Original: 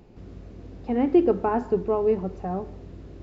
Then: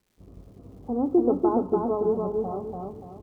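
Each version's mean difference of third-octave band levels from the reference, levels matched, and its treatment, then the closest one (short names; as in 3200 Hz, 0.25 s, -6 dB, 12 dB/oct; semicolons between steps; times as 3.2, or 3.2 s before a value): 5.0 dB: gate -41 dBFS, range -22 dB; steep low-pass 1300 Hz 72 dB/oct; crackle 350/s -54 dBFS; feedback echo 0.289 s, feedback 36%, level -3 dB; gain -3 dB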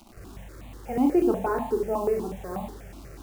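8.0 dB: bell 430 Hz -4 dB 0.4 oct; requantised 8-bit, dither none; Schroeder reverb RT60 0.39 s, combs from 28 ms, DRR 3 dB; step phaser 8.2 Hz 470–1500 Hz; gain +1 dB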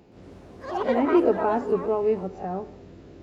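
3.5 dB: spectral swells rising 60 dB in 0.30 s; HPF 210 Hz 6 dB/oct; notch 1100 Hz, Q 24; echoes that change speed 0.121 s, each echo +7 st, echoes 2, each echo -6 dB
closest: third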